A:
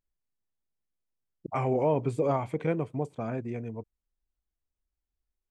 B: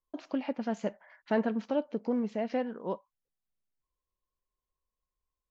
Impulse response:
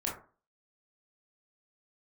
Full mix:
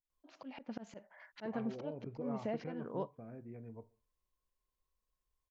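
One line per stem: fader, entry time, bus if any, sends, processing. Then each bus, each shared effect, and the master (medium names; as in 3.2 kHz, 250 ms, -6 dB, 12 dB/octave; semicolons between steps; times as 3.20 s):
-12.0 dB, 0.00 s, send -17 dB, low-pass 2.1 kHz 24 dB/octave; compression 2:1, threshold -32 dBFS, peak gain reduction 6.5 dB; rotary cabinet horn 0.7 Hz
0.0 dB, 0.10 s, no send, bass shelf 75 Hz +3.5 dB; slow attack 268 ms; compression 2:1, threshold -39 dBFS, peak gain reduction 6.5 dB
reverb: on, RT60 0.40 s, pre-delay 18 ms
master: none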